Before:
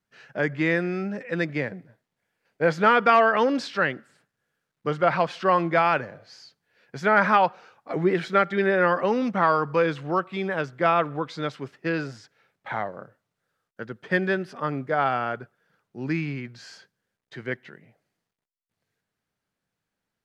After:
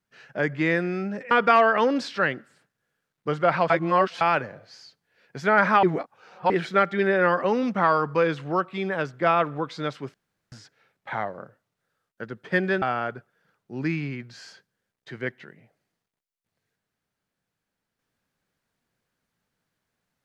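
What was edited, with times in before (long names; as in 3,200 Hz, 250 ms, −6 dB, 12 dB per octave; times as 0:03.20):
0:01.31–0:02.90: remove
0:05.29–0:05.80: reverse
0:07.42–0:08.09: reverse
0:11.73–0:12.11: fill with room tone
0:14.41–0:15.07: remove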